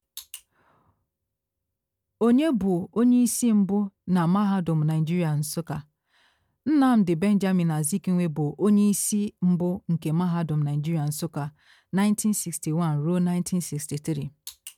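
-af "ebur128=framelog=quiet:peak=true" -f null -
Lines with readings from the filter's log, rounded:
Integrated loudness:
  I:         -24.2 LUFS
  Threshold: -34.9 LUFS
Loudness range:
  LRA:         3.6 LU
  Threshold: -44.7 LUFS
  LRA low:   -26.6 LUFS
  LRA high:  -23.0 LUFS
True peak:
  Peak:      -12.4 dBFS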